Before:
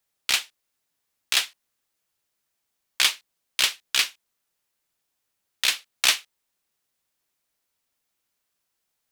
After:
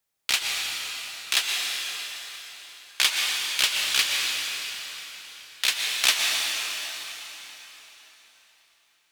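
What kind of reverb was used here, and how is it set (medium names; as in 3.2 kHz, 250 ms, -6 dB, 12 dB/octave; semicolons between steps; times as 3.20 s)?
plate-style reverb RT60 4.2 s, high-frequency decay 0.9×, pre-delay 105 ms, DRR -1 dB; trim -1.5 dB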